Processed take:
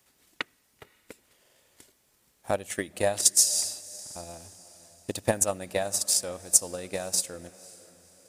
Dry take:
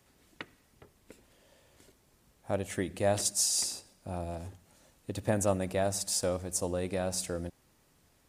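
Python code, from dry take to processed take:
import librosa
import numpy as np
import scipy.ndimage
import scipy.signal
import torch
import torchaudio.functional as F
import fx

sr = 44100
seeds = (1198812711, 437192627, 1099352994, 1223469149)

y = fx.tilt_eq(x, sr, slope=2.0)
y = fx.echo_diffused(y, sr, ms=519, feedback_pct=42, wet_db=-16.0)
y = fx.transient(y, sr, attack_db=12, sustain_db=-1)
y = fx.buffer_glitch(y, sr, at_s=(1.41, 4.02), block=2048, repeats=2)
y = y * 10.0 ** (-3.0 / 20.0)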